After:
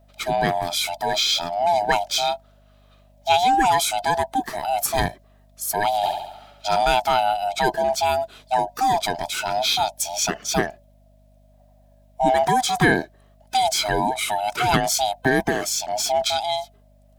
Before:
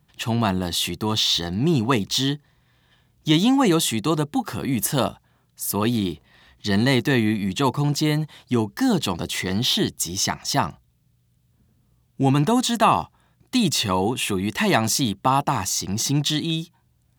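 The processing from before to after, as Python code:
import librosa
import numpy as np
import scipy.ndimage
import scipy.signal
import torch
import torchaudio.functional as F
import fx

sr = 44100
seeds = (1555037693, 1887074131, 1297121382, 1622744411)

y = fx.band_swap(x, sr, width_hz=500)
y = fx.room_flutter(y, sr, wall_m=11.9, rt60_s=0.81, at=(6.02, 6.77), fade=0.02)
y = fx.add_hum(y, sr, base_hz=50, snr_db=32)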